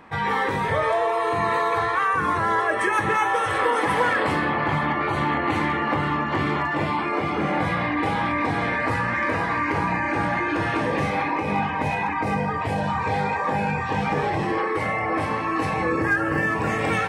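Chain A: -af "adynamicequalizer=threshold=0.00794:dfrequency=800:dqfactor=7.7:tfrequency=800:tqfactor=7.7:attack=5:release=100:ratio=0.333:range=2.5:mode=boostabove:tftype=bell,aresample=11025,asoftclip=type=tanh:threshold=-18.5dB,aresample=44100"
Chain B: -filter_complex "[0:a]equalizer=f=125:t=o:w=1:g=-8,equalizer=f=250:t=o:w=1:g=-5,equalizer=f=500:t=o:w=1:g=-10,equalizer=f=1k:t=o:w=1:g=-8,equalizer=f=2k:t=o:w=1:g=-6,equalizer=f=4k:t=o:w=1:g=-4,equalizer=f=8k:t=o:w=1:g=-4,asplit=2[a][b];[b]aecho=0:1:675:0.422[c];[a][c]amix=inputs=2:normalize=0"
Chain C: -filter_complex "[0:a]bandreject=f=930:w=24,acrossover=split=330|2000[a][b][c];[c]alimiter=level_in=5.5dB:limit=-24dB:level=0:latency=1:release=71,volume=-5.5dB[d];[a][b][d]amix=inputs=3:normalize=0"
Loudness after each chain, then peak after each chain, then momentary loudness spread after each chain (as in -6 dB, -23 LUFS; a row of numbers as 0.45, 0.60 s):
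-24.5, -31.5, -23.5 LUFS; -17.5, -18.5, -8.5 dBFS; 2, 3, 3 LU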